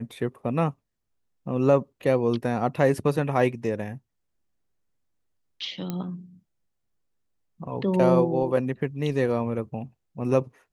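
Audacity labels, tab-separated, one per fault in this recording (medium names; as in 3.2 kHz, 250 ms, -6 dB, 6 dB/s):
5.900000	5.900000	pop -17 dBFS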